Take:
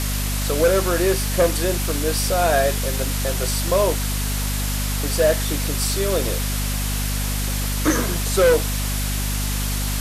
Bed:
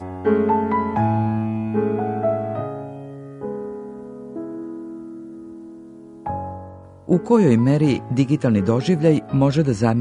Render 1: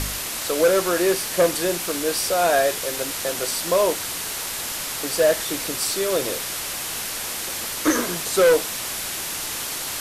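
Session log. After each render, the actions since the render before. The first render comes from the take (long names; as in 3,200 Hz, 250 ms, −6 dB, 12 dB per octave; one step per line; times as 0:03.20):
hum removal 50 Hz, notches 5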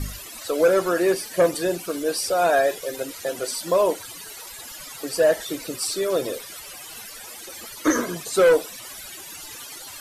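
broadband denoise 17 dB, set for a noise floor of −29 dBFS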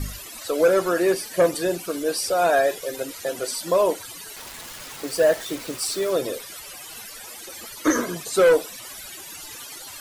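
0:04.36–0:06.11: hold until the input has moved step −33.5 dBFS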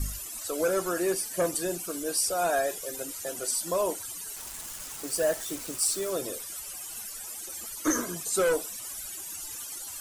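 octave-band graphic EQ 125/250/500/1,000/2,000/4,000/8,000 Hz −6/−4/−8/−4/−7/−7/+4 dB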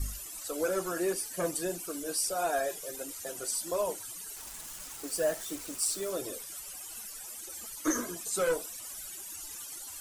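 flanger 1.6 Hz, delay 2.1 ms, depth 5.1 ms, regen −38%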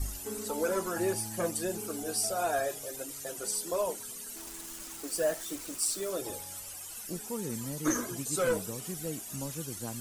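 mix in bed −22.5 dB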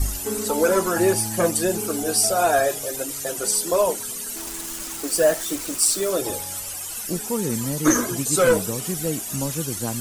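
level +11.5 dB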